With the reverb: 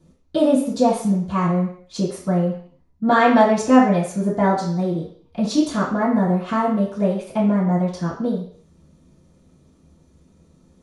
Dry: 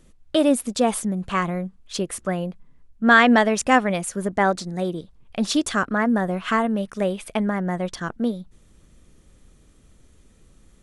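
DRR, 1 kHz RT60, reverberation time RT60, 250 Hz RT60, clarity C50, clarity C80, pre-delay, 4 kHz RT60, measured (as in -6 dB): -13.0 dB, 0.55 s, 0.55 s, 0.50 s, 5.0 dB, 9.0 dB, 3 ms, 0.60 s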